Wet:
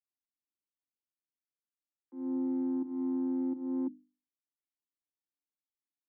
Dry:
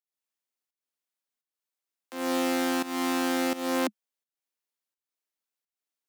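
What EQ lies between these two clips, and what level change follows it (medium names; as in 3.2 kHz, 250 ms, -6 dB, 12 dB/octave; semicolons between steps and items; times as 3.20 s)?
cascade formant filter u; hum notches 50/100/150/200/250/300 Hz; static phaser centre 2.5 kHz, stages 6; +4.0 dB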